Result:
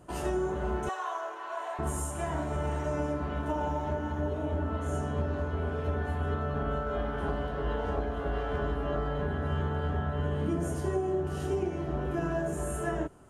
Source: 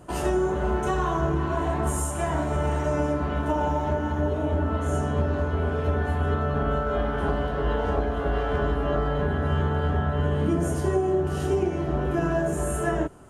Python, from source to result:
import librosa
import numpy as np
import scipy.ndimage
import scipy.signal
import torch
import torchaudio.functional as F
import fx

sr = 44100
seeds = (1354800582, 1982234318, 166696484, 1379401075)

y = fx.highpass(x, sr, hz=580.0, slope=24, at=(0.89, 1.79))
y = y * 10.0 ** (-6.5 / 20.0)